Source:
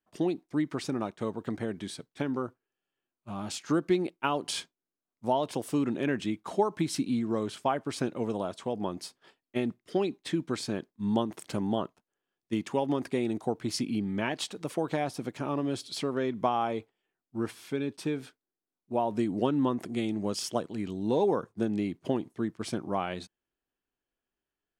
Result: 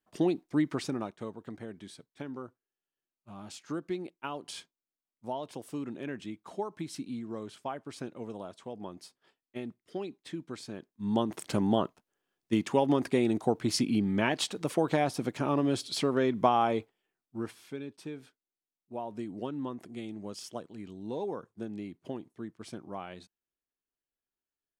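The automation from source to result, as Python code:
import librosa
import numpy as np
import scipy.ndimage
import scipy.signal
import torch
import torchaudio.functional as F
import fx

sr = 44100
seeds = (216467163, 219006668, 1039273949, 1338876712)

y = fx.gain(x, sr, db=fx.line((0.7, 1.5), (1.41, -9.0), (10.76, -9.0), (11.36, 3.0), (16.76, 3.0), (17.92, -9.5)))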